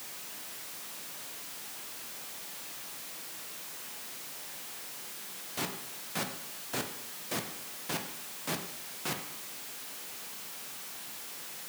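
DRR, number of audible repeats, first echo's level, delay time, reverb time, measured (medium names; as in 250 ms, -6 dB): 4.5 dB, no echo, no echo, no echo, 0.75 s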